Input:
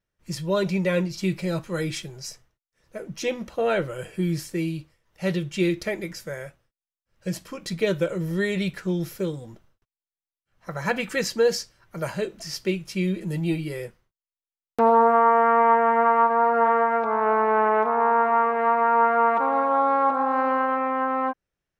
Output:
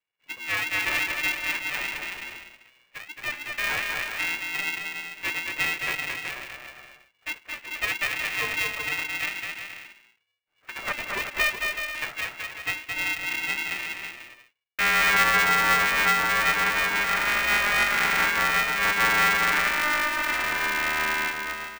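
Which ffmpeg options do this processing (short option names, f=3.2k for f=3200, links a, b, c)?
-af "aecho=1:1:220|374|481.8|557.3|610.1:0.631|0.398|0.251|0.158|0.1,lowpass=f=2.2k:t=q:w=0.5098,lowpass=f=2.2k:t=q:w=0.6013,lowpass=f=2.2k:t=q:w=0.9,lowpass=f=2.2k:t=q:w=2.563,afreqshift=-2600,aeval=exprs='val(0)*sgn(sin(2*PI*300*n/s))':c=same,volume=-5dB"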